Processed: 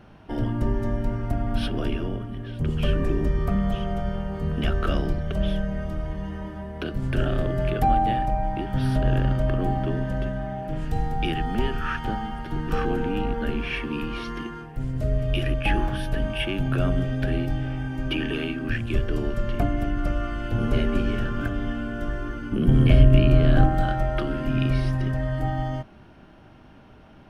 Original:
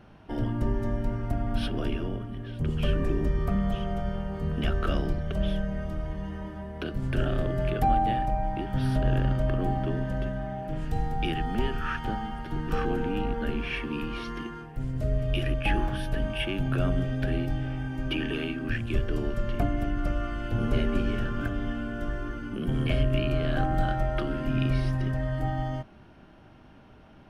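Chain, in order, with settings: 22.52–23.69 low shelf 370 Hz +8.5 dB; gain +3 dB

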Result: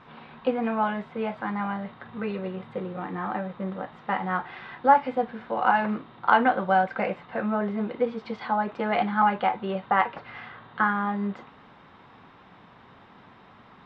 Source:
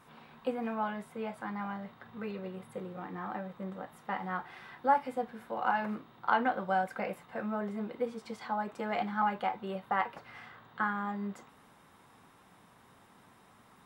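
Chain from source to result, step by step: LPF 4000 Hz 24 dB/oct; gain +8.5 dB

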